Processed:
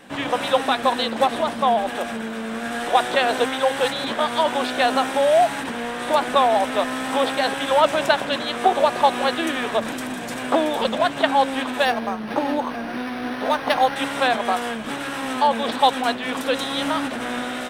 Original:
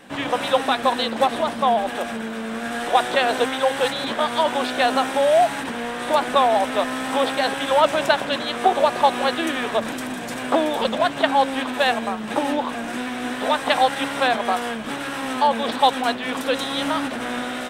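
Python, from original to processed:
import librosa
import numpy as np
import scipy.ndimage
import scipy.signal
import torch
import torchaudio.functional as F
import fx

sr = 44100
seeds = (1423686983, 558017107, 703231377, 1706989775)

y = fx.resample_linear(x, sr, factor=6, at=(11.85, 13.96))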